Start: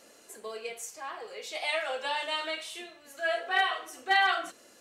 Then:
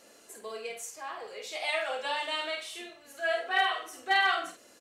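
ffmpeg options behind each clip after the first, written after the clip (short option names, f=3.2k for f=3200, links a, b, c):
-filter_complex "[0:a]asplit=2[a][b];[b]adelay=49,volume=-7dB[c];[a][c]amix=inputs=2:normalize=0,volume=-1dB"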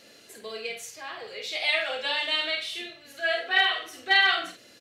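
-af "equalizer=f=125:t=o:w=1:g=10,equalizer=f=1k:t=o:w=1:g=-6,equalizer=f=2k:t=o:w=1:g=4,equalizer=f=4k:t=o:w=1:g=8,equalizer=f=8k:t=o:w=1:g=-6,volume=2.5dB"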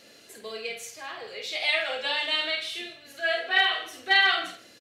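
-af "aecho=1:1:159:0.126"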